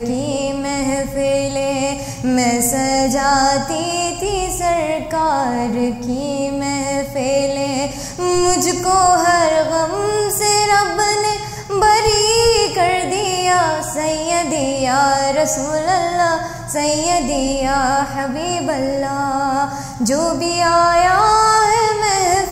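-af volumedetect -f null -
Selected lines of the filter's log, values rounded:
mean_volume: -16.5 dB
max_volume: -1.5 dB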